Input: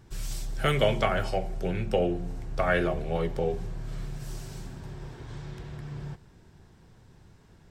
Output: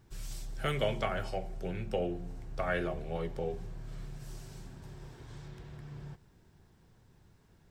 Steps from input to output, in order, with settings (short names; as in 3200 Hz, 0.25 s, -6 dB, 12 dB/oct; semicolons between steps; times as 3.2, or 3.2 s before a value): 4.82–5.48 high shelf 5500 Hz +6.5 dB; bit-crush 12-bit; gain -7.5 dB